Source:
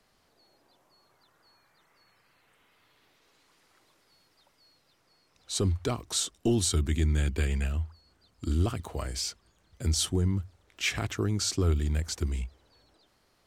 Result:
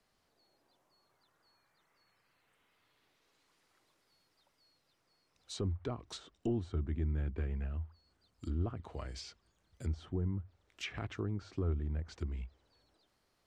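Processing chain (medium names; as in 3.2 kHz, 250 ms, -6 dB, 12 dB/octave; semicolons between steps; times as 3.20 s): low-pass that closes with the level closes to 1.3 kHz, closed at -24.5 dBFS; trim -8.5 dB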